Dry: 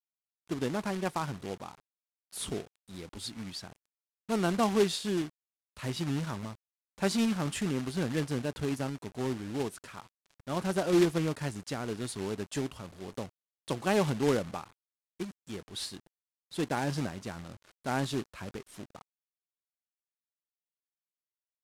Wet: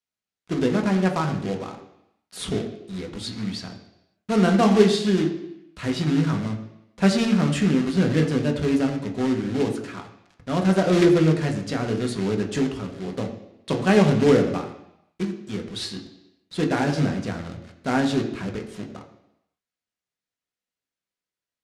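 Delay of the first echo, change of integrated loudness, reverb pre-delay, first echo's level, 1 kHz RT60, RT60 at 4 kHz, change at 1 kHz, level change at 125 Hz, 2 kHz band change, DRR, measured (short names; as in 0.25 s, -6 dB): none, +10.5 dB, 3 ms, none, 0.85 s, 0.85 s, +7.5 dB, +11.5 dB, +9.0 dB, 2.0 dB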